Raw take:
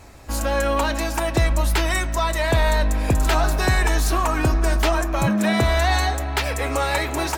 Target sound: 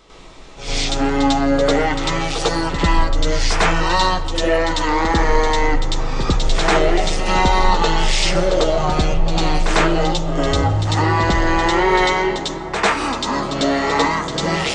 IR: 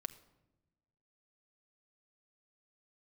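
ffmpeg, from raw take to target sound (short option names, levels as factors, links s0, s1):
-filter_complex "[0:a]asplit=2[s0][s1];[s1]lowshelf=f=69:g=9.5[s2];[1:a]atrim=start_sample=2205,adelay=49[s3];[s2][s3]afir=irnorm=-1:irlink=0,volume=3.35[s4];[s0][s4]amix=inputs=2:normalize=0,asetrate=22050,aresample=44100,lowshelf=f=360:g=-9.5"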